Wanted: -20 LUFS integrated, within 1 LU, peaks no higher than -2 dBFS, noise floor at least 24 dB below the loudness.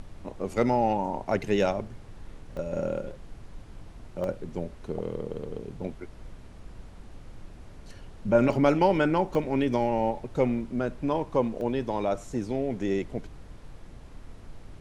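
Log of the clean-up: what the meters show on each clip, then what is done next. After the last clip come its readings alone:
dropouts 5; longest dropout 1.2 ms; noise floor -47 dBFS; noise floor target -52 dBFS; loudness -28.0 LUFS; peak -9.0 dBFS; loudness target -20.0 LUFS
-> interpolate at 2.57/4.24/8.53/9.35/11.61, 1.2 ms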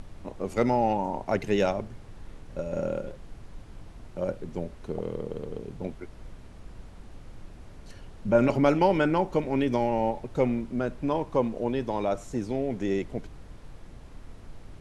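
dropouts 0; noise floor -47 dBFS; noise floor target -52 dBFS
-> noise print and reduce 6 dB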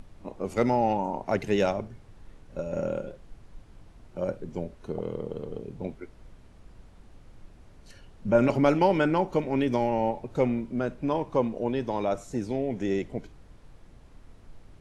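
noise floor -53 dBFS; loudness -28.0 LUFS; peak -9.0 dBFS; loudness target -20.0 LUFS
-> gain +8 dB; limiter -2 dBFS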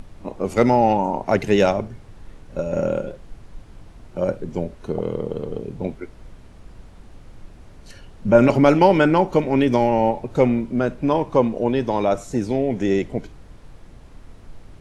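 loudness -20.0 LUFS; peak -2.0 dBFS; noise floor -45 dBFS

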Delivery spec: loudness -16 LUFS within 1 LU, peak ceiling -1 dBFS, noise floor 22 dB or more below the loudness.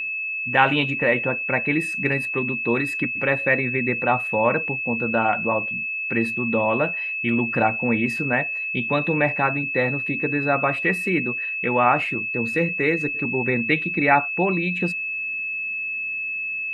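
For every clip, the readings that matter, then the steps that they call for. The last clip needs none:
steady tone 2600 Hz; tone level -25 dBFS; loudness -21.5 LUFS; peak -4.5 dBFS; loudness target -16.0 LUFS
-> notch 2600 Hz, Q 30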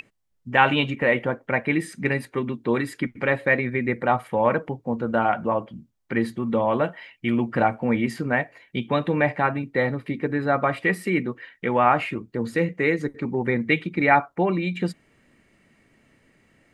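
steady tone none; loudness -24.0 LUFS; peak -4.5 dBFS; loudness target -16.0 LUFS
-> gain +8 dB; limiter -1 dBFS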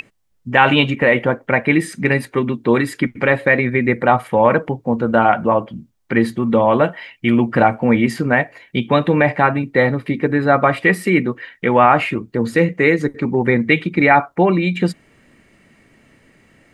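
loudness -16.5 LUFS; peak -1.0 dBFS; noise floor -58 dBFS

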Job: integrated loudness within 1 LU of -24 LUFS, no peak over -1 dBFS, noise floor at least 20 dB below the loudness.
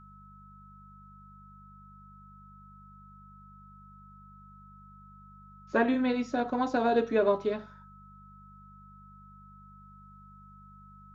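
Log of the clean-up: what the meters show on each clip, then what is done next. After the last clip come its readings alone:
hum 50 Hz; harmonics up to 200 Hz; hum level -52 dBFS; steady tone 1300 Hz; tone level -53 dBFS; loudness -28.5 LUFS; peak -13.0 dBFS; loudness target -24.0 LUFS
-> de-hum 50 Hz, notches 4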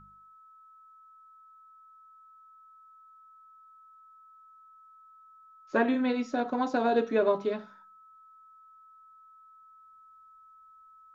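hum none; steady tone 1300 Hz; tone level -53 dBFS
-> notch 1300 Hz, Q 30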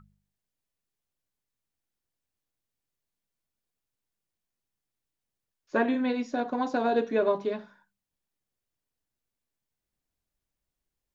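steady tone none; loudness -28.0 LUFS; peak -13.0 dBFS; loudness target -24.0 LUFS
-> gain +4 dB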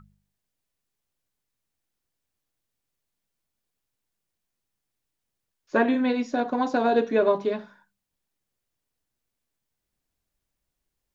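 loudness -24.0 LUFS; peak -9.0 dBFS; noise floor -83 dBFS

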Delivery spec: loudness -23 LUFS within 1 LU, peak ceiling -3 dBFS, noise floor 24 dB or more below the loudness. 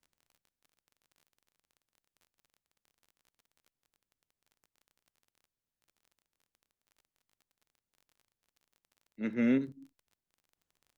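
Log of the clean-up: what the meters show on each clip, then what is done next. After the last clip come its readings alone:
ticks 30/s; loudness -31.5 LUFS; peak -19.0 dBFS; loudness target -23.0 LUFS
-> de-click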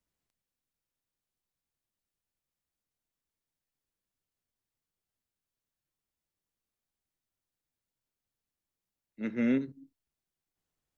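ticks 0.091/s; loudness -31.5 LUFS; peak -19.0 dBFS; loudness target -23.0 LUFS
-> gain +8.5 dB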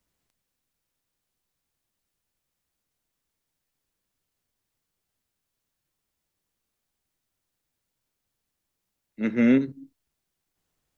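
loudness -23.0 LUFS; peak -10.5 dBFS; noise floor -82 dBFS

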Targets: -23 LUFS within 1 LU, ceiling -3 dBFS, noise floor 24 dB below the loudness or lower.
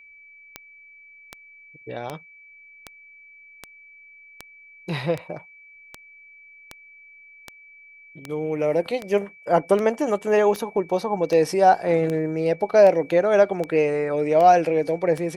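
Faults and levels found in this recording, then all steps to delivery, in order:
clicks 20; steady tone 2300 Hz; tone level -46 dBFS; loudness -21.0 LUFS; peak -4.5 dBFS; loudness target -23.0 LUFS
-> de-click; notch 2300 Hz, Q 30; gain -2 dB

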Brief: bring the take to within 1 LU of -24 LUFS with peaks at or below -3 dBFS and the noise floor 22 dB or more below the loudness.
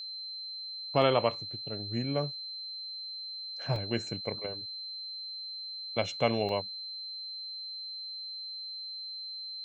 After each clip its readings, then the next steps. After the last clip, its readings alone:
dropouts 3; longest dropout 1.7 ms; steady tone 4100 Hz; tone level -38 dBFS; loudness -34.0 LUFS; peak -11.0 dBFS; loudness target -24.0 LUFS
-> interpolate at 1.02/3.76/6.49, 1.7 ms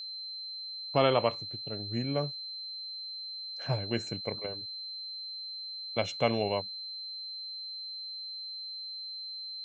dropouts 0; steady tone 4100 Hz; tone level -38 dBFS
-> notch 4100 Hz, Q 30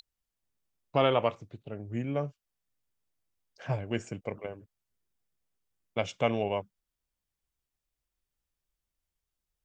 steady tone none; loudness -32.0 LUFS; peak -11.5 dBFS; loudness target -24.0 LUFS
-> gain +8 dB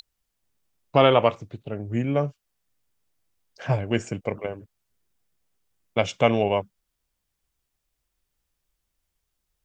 loudness -24.0 LUFS; peak -3.5 dBFS; noise floor -80 dBFS

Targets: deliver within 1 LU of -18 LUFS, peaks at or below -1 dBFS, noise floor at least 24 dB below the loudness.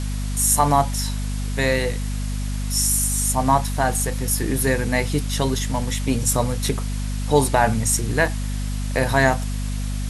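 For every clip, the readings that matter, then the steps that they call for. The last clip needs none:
hum 50 Hz; harmonics up to 250 Hz; hum level -23 dBFS; noise floor -25 dBFS; noise floor target -46 dBFS; loudness -21.5 LUFS; peak -3.5 dBFS; loudness target -18.0 LUFS
-> de-hum 50 Hz, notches 5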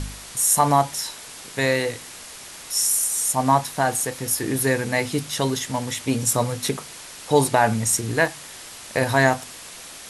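hum none; noise floor -40 dBFS; noise floor target -46 dBFS
-> denoiser 6 dB, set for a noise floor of -40 dBFS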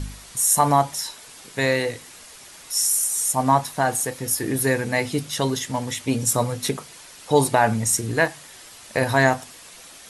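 noise floor -44 dBFS; noise floor target -46 dBFS
-> denoiser 6 dB, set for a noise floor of -44 dBFS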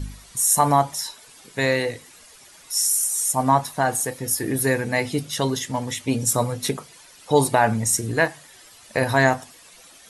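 noise floor -49 dBFS; loudness -21.5 LUFS; peak -3.5 dBFS; loudness target -18.0 LUFS
-> gain +3.5 dB; limiter -1 dBFS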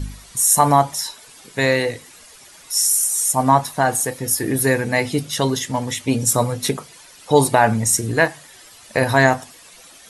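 loudness -18.0 LUFS; peak -1.0 dBFS; noise floor -45 dBFS

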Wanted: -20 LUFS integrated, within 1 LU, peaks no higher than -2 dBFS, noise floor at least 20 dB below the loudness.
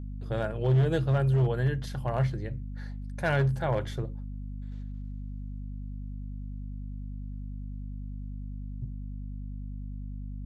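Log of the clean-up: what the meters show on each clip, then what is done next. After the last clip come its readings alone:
clipped 0.8%; flat tops at -19.0 dBFS; hum 50 Hz; harmonics up to 250 Hz; hum level -35 dBFS; loudness -32.0 LUFS; peak -19.0 dBFS; loudness target -20.0 LUFS
-> clip repair -19 dBFS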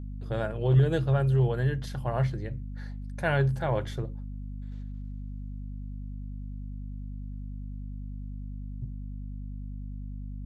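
clipped 0.0%; hum 50 Hz; harmonics up to 250 Hz; hum level -35 dBFS
-> notches 50/100/150/200/250 Hz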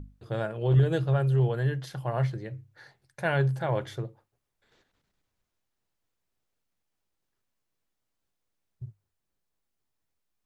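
hum none; loudness -28.0 LUFS; peak -13.0 dBFS; loudness target -20.0 LUFS
-> gain +8 dB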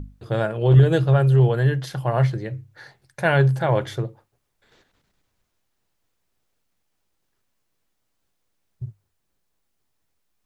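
loudness -20.0 LUFS; peak -5.0 dBFS; noise floor -74 dBFS

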